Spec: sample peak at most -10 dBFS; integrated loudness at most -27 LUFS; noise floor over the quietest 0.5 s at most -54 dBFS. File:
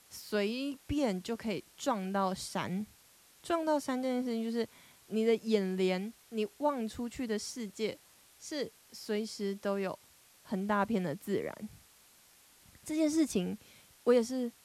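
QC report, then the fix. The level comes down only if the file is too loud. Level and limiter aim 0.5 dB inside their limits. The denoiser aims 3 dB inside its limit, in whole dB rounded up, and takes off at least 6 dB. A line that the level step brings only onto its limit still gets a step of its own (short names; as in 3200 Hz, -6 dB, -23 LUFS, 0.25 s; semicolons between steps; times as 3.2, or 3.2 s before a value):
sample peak -15.0 dBFS: OK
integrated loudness -34.0 LUFS: OK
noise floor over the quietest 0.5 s -62 dBFS: OK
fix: none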